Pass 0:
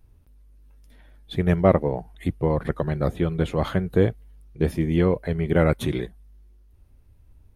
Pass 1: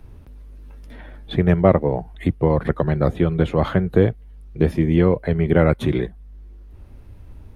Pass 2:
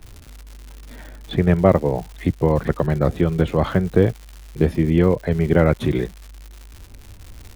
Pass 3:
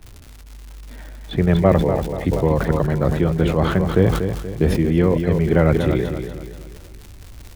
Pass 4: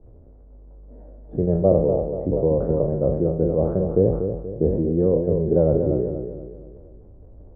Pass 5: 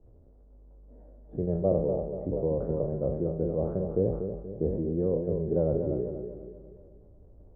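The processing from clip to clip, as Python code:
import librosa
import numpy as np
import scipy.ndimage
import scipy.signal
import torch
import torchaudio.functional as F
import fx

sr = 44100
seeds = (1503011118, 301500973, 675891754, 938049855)

y1 = fx.high_shelf(x, sr, hz=5400.0, db=-12.0)
y1 = fx.band_squash(y1, sr, depth_pct=40)
y1 = y1 * 10.0 ** (4.5 / 20.0)
y2 = fx.dmg_crackle(y1, sr, seeds[0], per_s=200.0, level_db=-31.0)
y3 = fx.echo_feedback(y2, sr, ms=239, feedback_pct=44, wet_db=-8.0)
y3 = fx.sustainer(y3, sr, db_per_s=52.0)
y3 = y3 * 10.0 ** (-1.0 / 20.0)
y4 = fx.spec_trails(y3, sr, decay_s=0.5)
y4 = fx.ladder_lowpass(y4, sr, hz=630.0, resonance_pct=50)
y4 = y4 * 10.0 ** (2.5 / 20.0)
y5 = fx.echo_feedback(y4, sr, ms=244, feedback_pct=55, wet_db=-18.0)
y5 = y5 * 10.0 ** (-8.5 / 20.0)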